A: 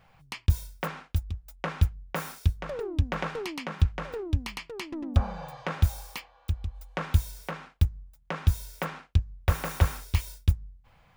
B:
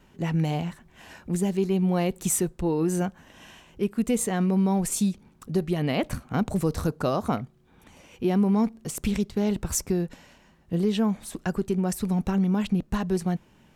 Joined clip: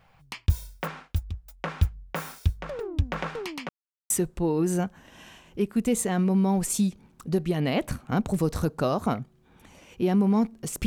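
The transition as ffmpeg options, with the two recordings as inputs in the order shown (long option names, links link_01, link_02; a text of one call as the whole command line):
ffmpeg -i cue0.wav -i cue1.wav -filter_complex "[0:a]apad=whole_dur=10.86,atrim=end=10.86,asplit=2[link_01][link_02];[link_01]atrim=end=3.69,asetpts=PTS-STARTPTS,afade=type=out:start_time=3.686:duration=0.004:curve=hsin[link_03];[link_02]atrim=start=3.69:end=4.1,asetpts=PTS-STARTPTS,volume=0[link_04];[1:a]atrim=start=2.32:end=9.08,asetpts=PTS-STARTPTS,afade=type=in:duration=0.004:curve=hsin[link_05];[link_03][link_04][link_05]concat=n=3:v=0:a=1" out.wav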